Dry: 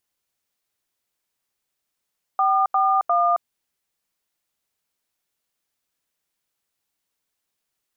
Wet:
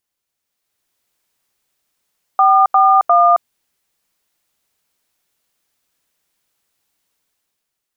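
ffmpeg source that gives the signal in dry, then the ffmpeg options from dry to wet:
-f lavfi -i "aevalsrc='0.119*clip(min(mod(t,0.352),0.269-mod(t,0.352))/0.002,0,1)*(eq(floor(t/0.352),0)*(sin(2*PI*770*mod(t,0.352))+sin(2*PI*1209*mod(t,0.352)))+eq(floor(t/0.352),1)*(sin(2*PI*770*mod(t,0.352))+sin(2*PI*1209*mod(t,0.352)))+eq(floor(t/0.352),2)*(sin(2*PI*697*mod(t,0.352))+sin(2*PI*1209*mod(t,0.352))))':d=1.056:s=44100"
-af "dynaudnorm=f=130:g=11:m=2.82"

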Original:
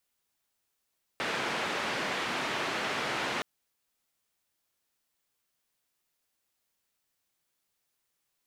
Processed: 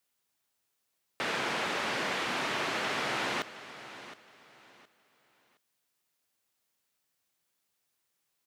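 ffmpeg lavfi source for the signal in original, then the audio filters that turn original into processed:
-f lavfi -i "anoisesrc=c=white:d=2.22:r=44100:seed=1,highpass=f=170,lowpass=f=2300,volume=-18dB"
-af "highpass=72,aecho=1:1:717|1434|2151:0.188|0.0509|0.0137"

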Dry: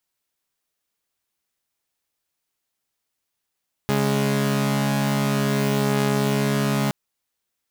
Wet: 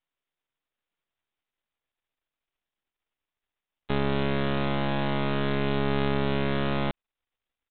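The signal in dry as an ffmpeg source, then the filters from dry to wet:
-f lavfi -i "aevalsrc='0.106*((2*mod(138.59*t,1)-1)+(2*mod(207.65*t,1)-1))':d=3.02:s=44100"
-af "asubboost=boost=5:cutoff=57,aresample=8000,aeval=exprs='max(val(0),0)':c=same,aresample=44100"

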